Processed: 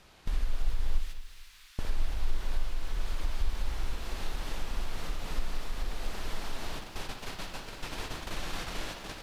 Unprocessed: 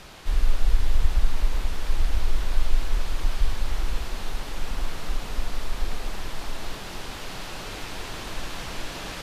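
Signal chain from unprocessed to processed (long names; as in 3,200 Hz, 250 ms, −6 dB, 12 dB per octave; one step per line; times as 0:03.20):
0:00.98–0:01.79: Bessel high-pass filter 2,100 Hz, order 4
noise gate −32 dBFS, range −14 dB
downward compressor 2 to 1, threshold −34 dBFS, peak gain reduction 13 dB
on a send: bucket-brigade delay 60 ms, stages 2,048, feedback 48%, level −8 dB
on the sum: feedback echo at a low word length 227 ms, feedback 35%, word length 9 bits, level −14 dB
level +1 dB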